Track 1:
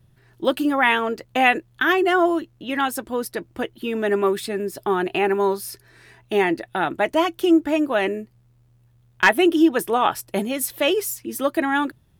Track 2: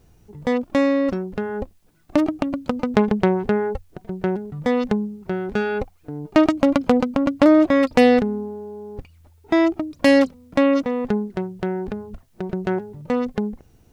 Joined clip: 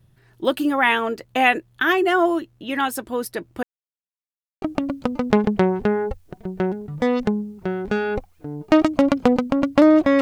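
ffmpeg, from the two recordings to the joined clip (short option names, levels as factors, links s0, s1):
-filter_complex "[0:a]apad=whole_dur=10.21,atrim=end=10.21,asplit=2[s0][s1];[s0]atrim=end=3.63,asetpts=PTS-STARTPTS,afade=t=out:st=3.626:d=0.004:c=hsin[s2];[s1]atrim=start=3.63:end=4.62,asetpts=PTS-STARTPTS,volume=0[s3];[1:a]atrim=start=2.26:end=7.85,asetpts=PTS-STARTPTS,afade=t=in:d=0.004:c=hsin[s4];[s2][s3][s4]concat=n=3:v=0:a=1"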